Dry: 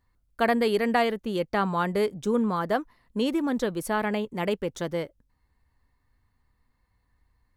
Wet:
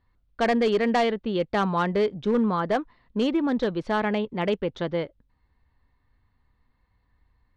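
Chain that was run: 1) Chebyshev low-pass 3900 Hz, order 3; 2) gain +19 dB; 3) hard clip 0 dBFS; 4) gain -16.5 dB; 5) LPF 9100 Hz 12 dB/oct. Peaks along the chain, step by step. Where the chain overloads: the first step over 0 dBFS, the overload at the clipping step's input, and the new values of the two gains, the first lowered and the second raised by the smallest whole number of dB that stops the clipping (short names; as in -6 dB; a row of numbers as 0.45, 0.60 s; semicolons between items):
-11.5, +7.5, 0.0, -16.5, -16.0 dBFS; step 2, 7.5 dB; step 2 +11 dB, step 4 -8.5 dB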